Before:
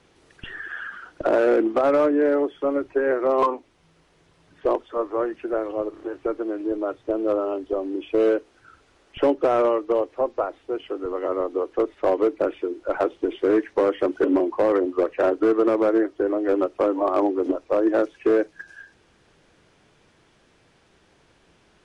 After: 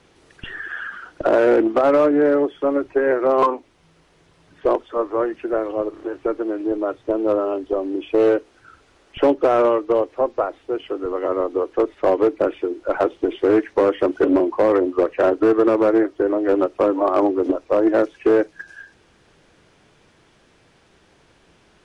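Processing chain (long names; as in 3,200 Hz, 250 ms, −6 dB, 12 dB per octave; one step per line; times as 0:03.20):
highs frequency-modulated by the lows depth 0.15 ms
level +3.5 dB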